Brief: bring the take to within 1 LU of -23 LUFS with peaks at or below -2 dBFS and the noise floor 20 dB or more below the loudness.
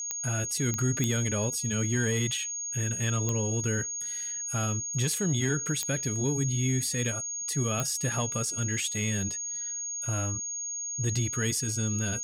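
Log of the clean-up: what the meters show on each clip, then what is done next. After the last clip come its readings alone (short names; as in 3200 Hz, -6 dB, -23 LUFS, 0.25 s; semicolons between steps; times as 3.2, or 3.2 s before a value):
clicks 6; steady tone 6600 Hz; tone level -32 dBFS; loudness -28.5 LUFS; peak -14.0 dBFS; loudness target -23.0 LUFS
-> de-click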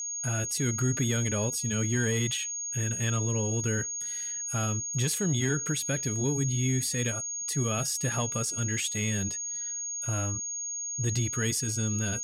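clicks 0; steady tone 6600 Hz; tone level -32 dBFS
-> notch 6600 Hz, Q 30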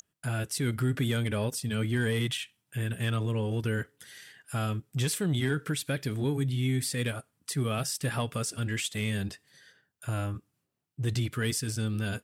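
steady tone none; loudness -31.0 LUFS; peak -18.0 dBFS; loudness target -23.0 LUFS
-> gain +8 dB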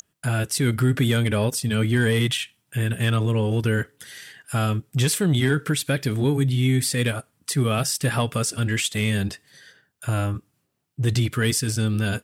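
loudness -23.0 LUFS; peak -10.0 dBFS; noise floor -72 dBFS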